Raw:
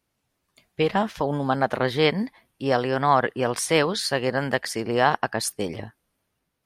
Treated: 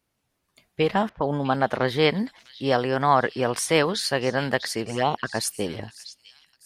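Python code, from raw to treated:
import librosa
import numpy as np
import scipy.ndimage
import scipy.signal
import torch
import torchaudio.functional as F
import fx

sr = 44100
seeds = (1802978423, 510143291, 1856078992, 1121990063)

y = fx.echo_stepped(x, sr, ms=650, hz=3900.0, octaves=0.7, feedback_pct=70, wet_db=-9.0)
y = fx.env_lowpass(y, sr, base_hz=620.0, full_db=-18.5, at=(1.09, 1.83))
y = fx.env_flanger(y, sr, rest_ms=4.1, full_db=-15.5, at=(4.84, 5.34), fade=0.02)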